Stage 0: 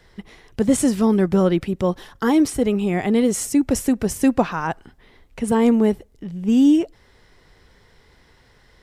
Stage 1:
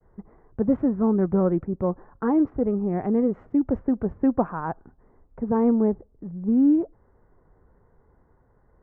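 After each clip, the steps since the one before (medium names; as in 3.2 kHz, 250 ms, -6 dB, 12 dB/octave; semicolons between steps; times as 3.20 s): local Wiener filter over 15 samples; low-pass 1.4 kHz 24 dB/octave; expander -54 dBFS; trim -4 dB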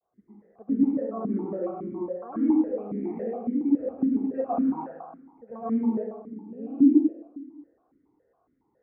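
reverberation RT60 1.3 s, pre-delay 98 ms, DRR -10.5 dB; stepped vowel filter 7.2 Hz; trim -5.5 dB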